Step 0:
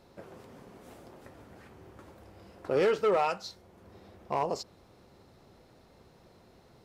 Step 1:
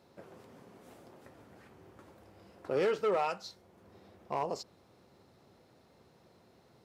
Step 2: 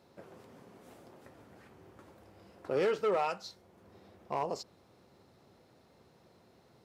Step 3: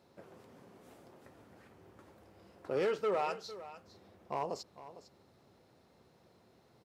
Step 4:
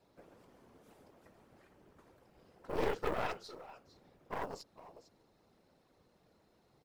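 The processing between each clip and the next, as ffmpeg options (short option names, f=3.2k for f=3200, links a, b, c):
-af "highpass=89,volume=-4dB"
-af anull
-af "aecho=1:1:454:0.178,volume=-2.5dB"
-af "afftfilt=real='hypot(re,im)*cos(2*PI*random(0))':imag='hypot(re,im)*sin(2*PI*random(1))':win_size=512:overlap=0.75,acrusher=bits=8:mode=log:mix=0:aa=0.000001,aeval=exprs='0.0473*(cos(1*acos(clip(val(0)/0.0473,-1,1)))-cos(1*PI/2))+0.015*(cos(4*acos(clip(val(0)/0.0473,-1,1)))-cos(4*PI/2))':c=same,volume=1.5dB"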